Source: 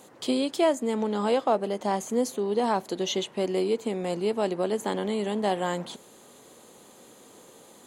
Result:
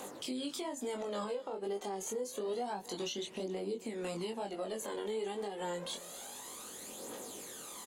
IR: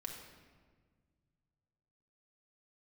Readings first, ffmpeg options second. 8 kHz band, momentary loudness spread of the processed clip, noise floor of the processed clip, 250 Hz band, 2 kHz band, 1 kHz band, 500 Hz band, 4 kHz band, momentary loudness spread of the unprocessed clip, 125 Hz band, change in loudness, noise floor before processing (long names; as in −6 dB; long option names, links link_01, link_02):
−3.0 dB, 7 LU, −50 dBFS, −13.5 dB, −10.5 dB, −12.5 dB, −11.5 dB, −7.5 dB, 5 LU, −13.0 dB, −12.5 dB, −53 dBFS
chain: -filter_complex "[0:a]highshelf=frequency=4500:gain=5,acrossover=split=400[link_01][link_02];[link_02]acompressor=threshold=-35dB:ratio=4[link_03];[link_01][link_03]amix=inputs=2:normalize=0,aphaser=in_gain=1:out_gain=1:delay=2.6:decay=0.56:speed=0.28:type=triangular,acompressor=threshold=-30dB:ratio=4,flanger=delay=20:depth=4.2:speed=1.1,equalizer=frequency=110:width=0.54:gain=-10.5,asplit=2[link_04][link_05];[link_05]aecho=0:1:274:0.0794[link_06];[link_04][link_06]amix=inputs=2:normalize=0,alimiter=level_in=11.5dB:limit=-24dB:level=0:latency=1:release=234,volume=-11.5dB,volume=6dB"